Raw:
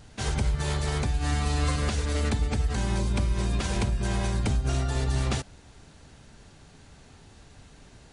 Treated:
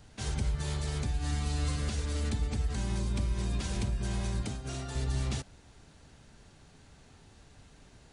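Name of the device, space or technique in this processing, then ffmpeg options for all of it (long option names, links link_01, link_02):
one-band saturation: -filter_complex "[0:a]asettb=1/sr,asplit=3[link_01][link_02][link_03];[link_01]atrim=end=4.424[link_04];[link_02]atrim=start=4.42:end=4.95,asetpts=PTS-STARTPTS,afade=type=in:duration=0.004:curve=qsin,afade=type=out:start_time=0.526:duration=0.004:curve=qsin,highpass=frequency=190:poles=1[link_05];[link_03]atrim=start=4.946[link_06];[link_04][link_05]acrossfade=duration=0.004:curve1=hsin:curve2=qsin[link_07];[link_07][link_06]acrossfade=duration=0.004:curve1=qsin:curve2=hsin,acrossover=split=330|2900[link_08][link_09][link_10];[link_09]asoftclip=type=tanh:threshold=-37.5dB[link_11];[link_08][link_11][link_10]amix=inputs=3:normalize=0,volume=-5dB"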